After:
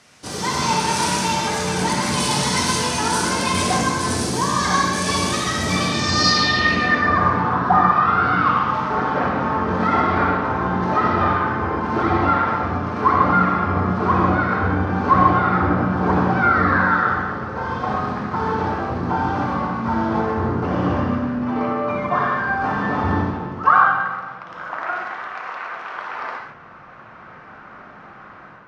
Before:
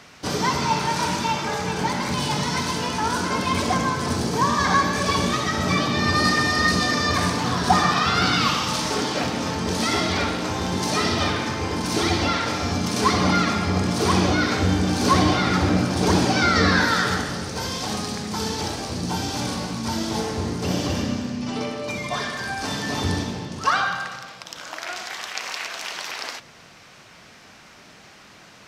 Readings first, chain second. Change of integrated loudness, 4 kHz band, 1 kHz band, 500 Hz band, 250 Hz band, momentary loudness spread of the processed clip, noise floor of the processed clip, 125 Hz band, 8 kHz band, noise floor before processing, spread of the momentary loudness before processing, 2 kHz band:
+3.0 dB, -1.0 dB, +6.0 dB, +2.5 dB, +1.5 dB, 10 LU, -42 dBFS, +1.5 dB, +2.0 dB, -48 dBFS, 10 LU, +3.0 dB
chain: treble shelf 7.9 kHz +4 dB; level rider gain up to 10 dB; low-pass sweep 10 kHz -> 1.3 kHz, 5.85–7.16 s; gated-style reverb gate 170 ms flat, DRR 1 dB; trim -7.5 dB

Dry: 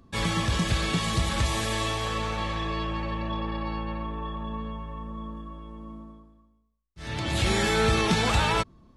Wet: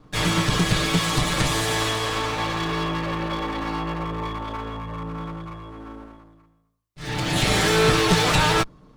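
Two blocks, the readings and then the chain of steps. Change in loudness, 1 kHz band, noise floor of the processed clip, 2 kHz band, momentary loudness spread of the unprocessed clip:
+5.0 dB, +4.5 dB, -60 dBFS, +5.5 dB, 17 LU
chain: comb filter that takes the minimum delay 6.6 ms; trim +6.5 dB

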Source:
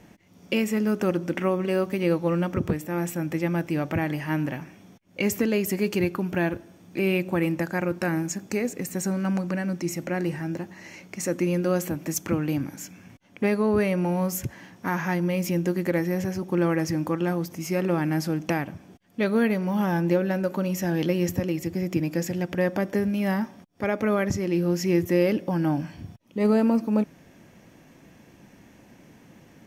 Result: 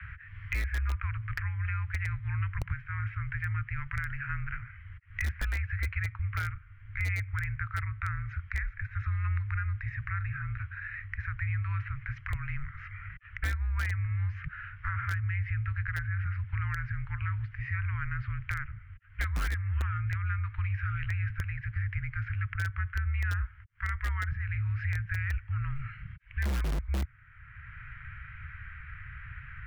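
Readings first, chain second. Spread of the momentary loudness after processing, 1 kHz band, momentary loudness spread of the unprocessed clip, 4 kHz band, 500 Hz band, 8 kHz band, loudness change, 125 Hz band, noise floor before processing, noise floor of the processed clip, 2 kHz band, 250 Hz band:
13 LU, -9.0 dB, 9 LU, -11.5 dB, under -30 dB, under -15 dB, -8.0 dB, -1.0 dB, -54 dBFS, -51 dBFS, -1.5 dB, under -25 dB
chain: inverse Chebyshev band-stop 430–1000 Hz, stop band 50 dB; bass shelf 160 Hz -9.5 dB; mistuned SSB -280 Hz 180–2400 Hz; in parallel at -9 dB: integer overflow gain 24 dB; on the sum: three bands compressed up and down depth 70%

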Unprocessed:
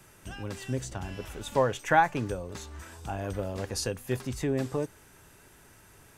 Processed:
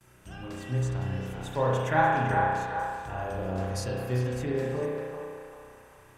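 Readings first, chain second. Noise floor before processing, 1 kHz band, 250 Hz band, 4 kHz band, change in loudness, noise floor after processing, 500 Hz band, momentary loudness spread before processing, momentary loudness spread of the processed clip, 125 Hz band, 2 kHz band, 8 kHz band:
-56 dBFS, +2.0 dB, 0.0 dB, -3.5 dB, +1.5 dB, -55 dBFS, +1.0 dB, 17 LU, 17 LU, +5.0 dB, +1.5 dB, -6.0 dB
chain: band-passed feedback delay 391 ms, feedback 49%, band-pass 1.1 kHz, level -3 dB; spring tank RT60 1.4 s, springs 32 ms, chirp 75 ms, DRR -4 dB; gate with hold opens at -45 dBFS; peaking EQ 130 Hz +5.5 dB 0.3 oct; trim -6 dB

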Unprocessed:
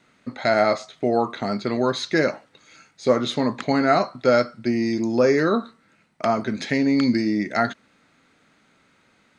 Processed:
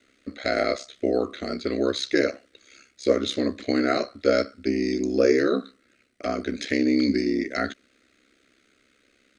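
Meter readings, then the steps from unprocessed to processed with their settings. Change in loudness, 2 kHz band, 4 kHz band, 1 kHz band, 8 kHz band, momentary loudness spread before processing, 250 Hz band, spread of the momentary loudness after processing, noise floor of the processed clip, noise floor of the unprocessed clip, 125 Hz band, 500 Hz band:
-3.0 dB, -3.5 dB, -0.5 dB, -9.0 dB, no reading, 7 LU, -2.5 dB, 9 LU, -65 dBFS, -61 dBFS, -8.0 dB, -2.5 dB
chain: ring modulator 33 Hz; static phaser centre 370 Hz, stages 4; trim +3 dB

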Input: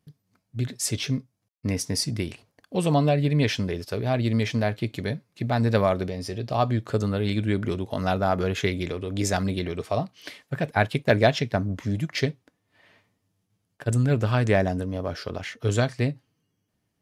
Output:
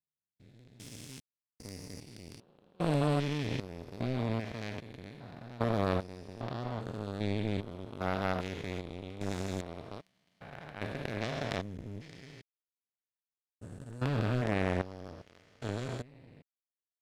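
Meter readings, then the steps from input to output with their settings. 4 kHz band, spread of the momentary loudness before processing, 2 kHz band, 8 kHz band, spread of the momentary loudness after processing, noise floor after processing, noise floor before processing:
-12.5 dB, 10 LU, -11.0 dB, -18.0 dB, 19 LU, under -85 dBFS, -77 dBFS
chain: spectrogram pixelated in time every 400 ms; power-law waveshaper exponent 2

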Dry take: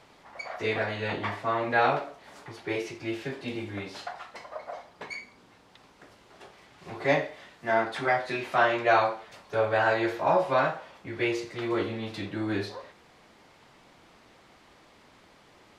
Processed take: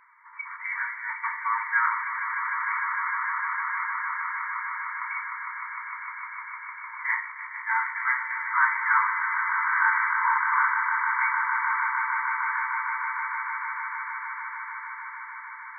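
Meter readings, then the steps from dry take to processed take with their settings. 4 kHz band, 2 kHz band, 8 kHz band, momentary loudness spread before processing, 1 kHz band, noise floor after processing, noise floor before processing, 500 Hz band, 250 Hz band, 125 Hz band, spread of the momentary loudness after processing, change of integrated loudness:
under -40 dB, +8.0 dB, no reading, 17 LU, +4.0 dB, -41 dBFS, -58 dBFS, under -40 dB, under -40 dB, under -40 dB, 13 LU, +1.5 dB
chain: FFT band-pass 890–2300 Hz; echo with a slow build-up 152 ms, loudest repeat 8, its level -9 dB; trim +4 dB

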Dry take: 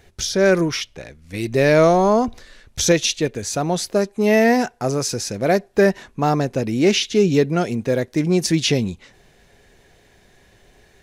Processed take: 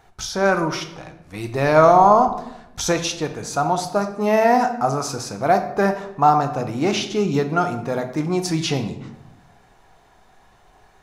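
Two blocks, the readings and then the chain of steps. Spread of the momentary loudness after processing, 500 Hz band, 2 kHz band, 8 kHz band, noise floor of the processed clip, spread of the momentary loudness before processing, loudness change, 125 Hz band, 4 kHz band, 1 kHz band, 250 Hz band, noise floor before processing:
14 LU, -2.0 dB, -2.5 dB, -5.0 dB, -54 dBFS, 9 LU, -1.0 dB, -3.0 dB, -5.0 dB, +7.0 dB, -4.0 dB, -55 dBFS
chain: high-order bell 990 Hz +13 dB 1.2 oct; simulated room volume 260 m³, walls mixed, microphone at 0.54 m; trim -5.5 dB

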